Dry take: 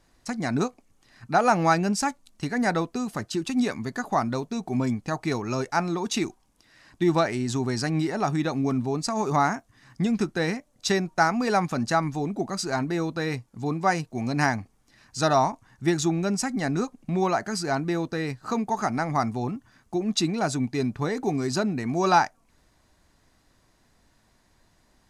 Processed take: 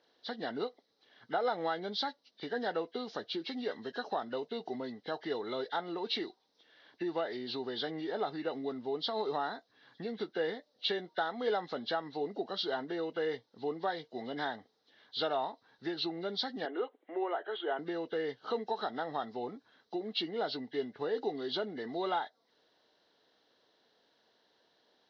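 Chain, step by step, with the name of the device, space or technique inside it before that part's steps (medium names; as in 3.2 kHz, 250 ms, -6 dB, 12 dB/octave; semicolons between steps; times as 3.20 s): 16.65–17.79 s: elliptic band-pass 330–4400 Hz, stop band 40 dB; hearing aid with frequency lowering (knee-point frequency compression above 1.5 kHz 1.5:1; compression 3:1, threshold -27 dBFS, peak gain reduction 10 dB; cabinet simulation 390–5800 Hz, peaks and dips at 460 Hz +9 dB, 1.1 kHz -6 dB, 2.5 kHz -6 dB, 3.9 kHz +6 dB); trim -4 dB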